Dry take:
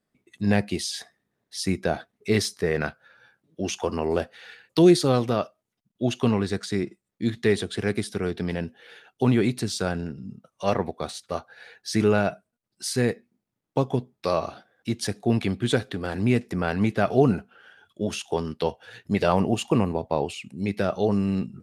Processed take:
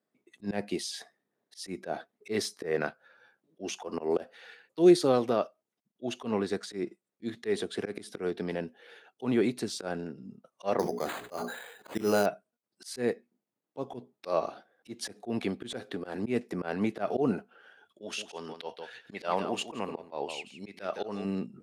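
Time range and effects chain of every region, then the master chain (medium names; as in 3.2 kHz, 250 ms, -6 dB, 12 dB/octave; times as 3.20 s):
10.79–12.26 s: careless resampling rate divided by 8×, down none, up hold + hum notches 60/120/180/240/300/360/420 Hz + decay stretcher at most 54 dB/s
18.01–21.25 s: low-pass 3.4 kHz 6 dB/octave + tilt shelf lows -8 dB, about 1.1 kHz + delay 165 ms -12 dB
whole clip: Bessel high-pass 430 Hz, order 2; tilt shelf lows +5.5 dB, about 790 Hz; slow attack 116 ms; trim -1.5 dB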